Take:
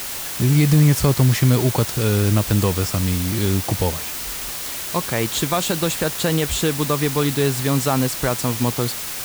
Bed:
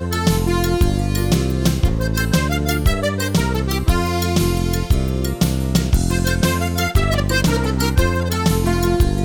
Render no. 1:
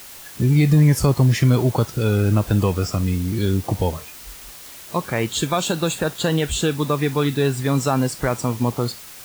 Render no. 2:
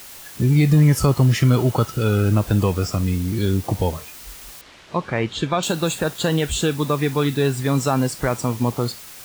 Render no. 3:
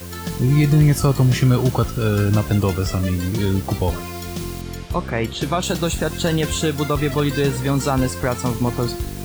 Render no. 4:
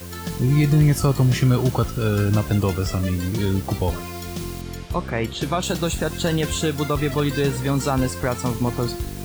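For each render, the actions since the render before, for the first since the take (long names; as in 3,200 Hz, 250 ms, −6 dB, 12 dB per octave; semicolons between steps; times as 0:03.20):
noise reduction from a noise print 11 dB
0:00.73–0:02.29: hollow resonant body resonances 1,300/2,900 Hz, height 11 dB; 0:04.61–0:05.63: low-pass filter 3,600 Hz
mix in bed −11.5 dB
level −2 dB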